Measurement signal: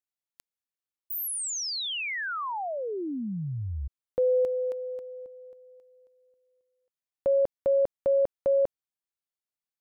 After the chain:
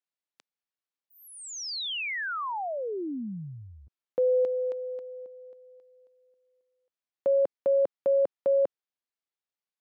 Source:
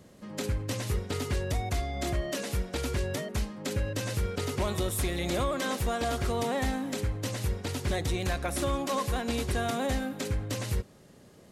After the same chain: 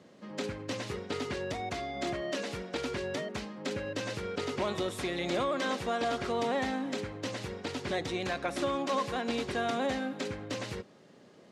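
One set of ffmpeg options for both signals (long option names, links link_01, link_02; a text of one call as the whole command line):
ffmpeg -i in.wav -af "highpass=200,lowpass=5000" out.wav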